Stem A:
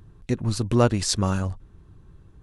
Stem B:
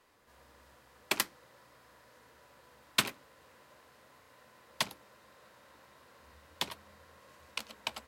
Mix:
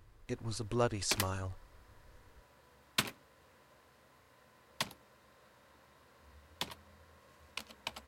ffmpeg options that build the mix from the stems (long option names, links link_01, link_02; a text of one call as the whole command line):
ffmpeg -i stem1.wav -i stem2.wav -filter_complex "[0:a]equalizer=frequency=170:width_type=o:width=0.99:gain=-13,volume=-10dB[link_01];[1:a]lowshelf=frequency=160:gain=8.5,volume=-4.5dB[link_02];[link_01][link_02]amix=inputs=2:normalize=0" out.wav